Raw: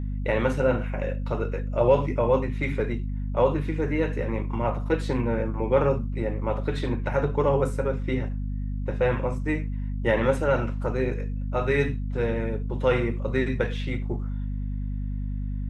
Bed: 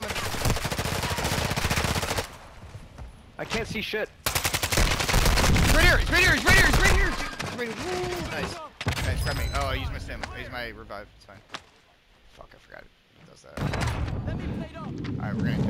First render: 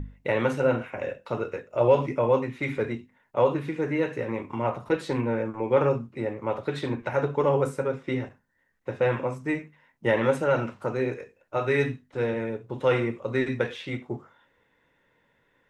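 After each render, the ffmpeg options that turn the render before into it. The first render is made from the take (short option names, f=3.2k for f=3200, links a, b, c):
-af "bandreject=f=50:t=h:w=6,bandreject=f=100:t=h:w=6,bandreject=f=150:t=h:w=6,bandreject=f=200:t=h:w=6,bandreject=f=250:t=h:w=6"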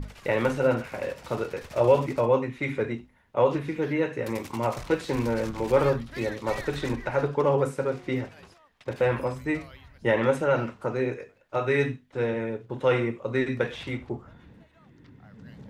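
-filter_complex "[1:a]volume=-20dB[a];[0:a][a]amix=inputs=2:normalize=0"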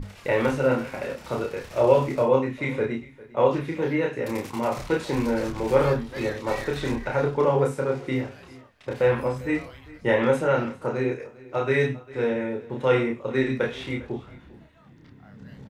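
-filter_complex "[0:a]asplit=2[a][b];[b]adelay=30,volume=-2.5dB[c];[a][c]amix=inputs=2:normalize=0,aecho=1:1:400:0.0944"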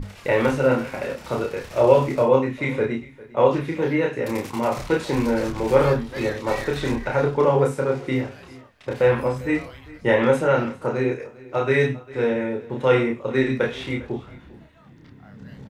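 -af "volume=3dB"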